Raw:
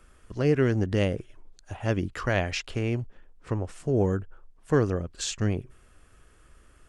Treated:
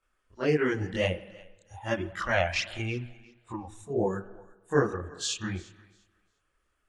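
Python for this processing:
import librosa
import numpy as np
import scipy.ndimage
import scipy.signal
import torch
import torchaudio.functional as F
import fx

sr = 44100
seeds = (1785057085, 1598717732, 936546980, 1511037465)

p1 = fx.low_shelf(x, sr, hz=450.0, db=-10.5)
p2 = fx.noise_reduce_blind(p1, sr, reduce_db=17)
p3 = fx.high_shelf(p2, sr, hz=6400.0, db=-8.5)
p4 = fx.rev_spring(p3, sr, rt60_s=1.2, pass_ms=(46, 50), chirp_ms=40, drr_db=14.5)
p5 = fx.chorus_voices(p4, sr, voices=2, hz=0.9, base_ms=25, depth_ms=4.0, mix_pct=65)
p6 = p5 + fx.echo_thinned(p5, sr, ms=350, feedback_pct=21, hz=420.0, wet_db=-22.5, dry=0)
y = F.gain(torch.from_numpy(p6), 6.5).numpy()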